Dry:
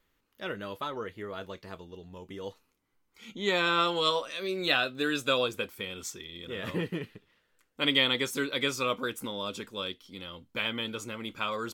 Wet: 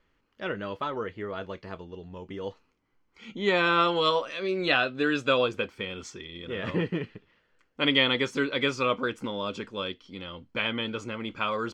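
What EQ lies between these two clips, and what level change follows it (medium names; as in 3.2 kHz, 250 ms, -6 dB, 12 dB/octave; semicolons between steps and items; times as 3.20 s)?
distance through air 140 m; band-stop 3.7 kHz, Q 10; +4.5 dB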